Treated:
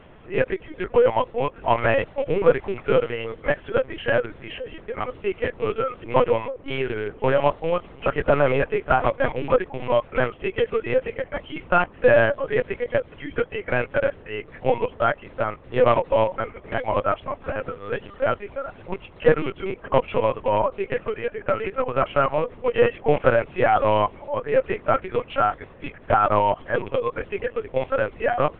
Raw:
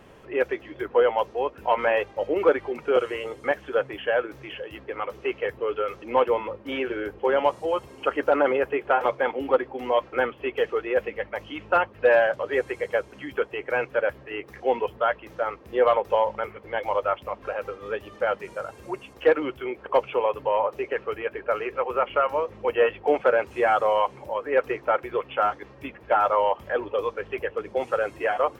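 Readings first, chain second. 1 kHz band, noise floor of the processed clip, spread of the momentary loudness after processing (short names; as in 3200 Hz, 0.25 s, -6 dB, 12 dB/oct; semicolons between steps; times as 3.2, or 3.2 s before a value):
+1.5 dB, -47 dBFS, 11 LU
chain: rattling part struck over -37 dBFS, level -28 dBFS; LPC vocoder at 8 kHz pitch kept; gain +2.5 dB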